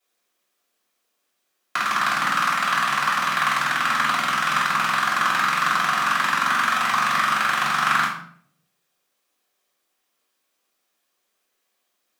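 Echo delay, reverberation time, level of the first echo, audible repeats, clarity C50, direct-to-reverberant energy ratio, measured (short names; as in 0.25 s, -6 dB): none, 0.60 s, none, none, 4.0 dB, -8.0 dB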